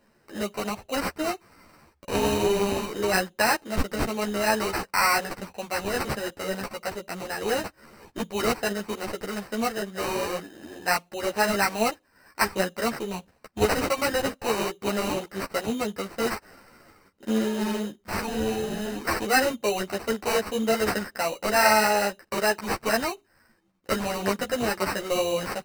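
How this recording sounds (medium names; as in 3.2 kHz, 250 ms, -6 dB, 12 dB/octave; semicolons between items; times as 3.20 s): aliases and images of a low sample rate 3.4 kHz, jitter 0%; a shimmering, thickened sound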